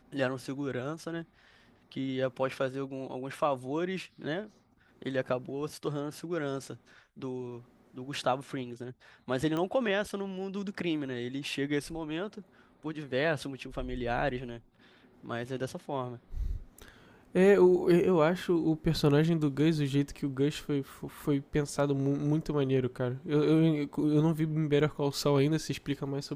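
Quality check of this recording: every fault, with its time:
9.57 s: pop -21 dBFS

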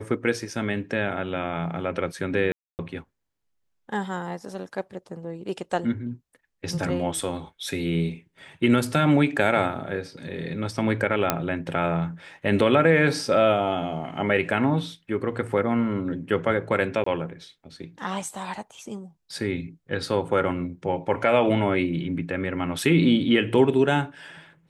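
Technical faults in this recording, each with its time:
2.52–2.79 s: dropout 269 ms
11.30 s: pop -4 dBFS
17.04–17.06 s: dropout 24 ms

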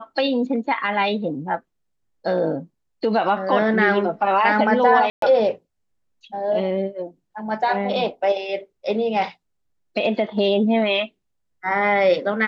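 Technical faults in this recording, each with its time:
5.10–5.22 s: dropout 123 ms

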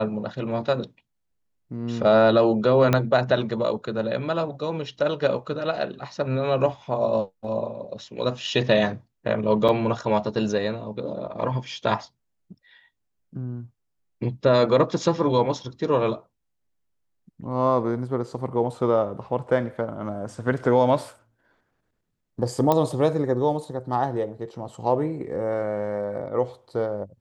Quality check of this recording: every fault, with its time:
2.93 s: pop -7 dBFS
9.68–9.69 s: dropout 6.7 ms
22.72 s: pop -9 dBFS

